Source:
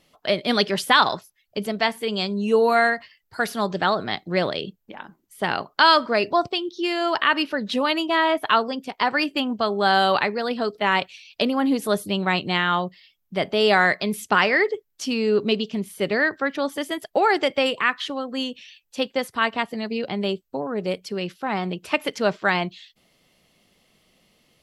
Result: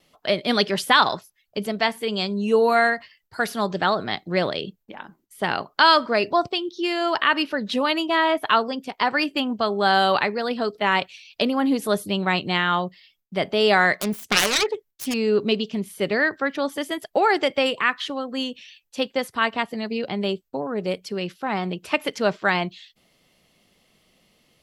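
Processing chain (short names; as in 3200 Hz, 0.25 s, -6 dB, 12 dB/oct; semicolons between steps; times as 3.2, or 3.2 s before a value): 13.94–15.14 self-modulated delay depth 0.66 ms; gate with hold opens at -56 dBFS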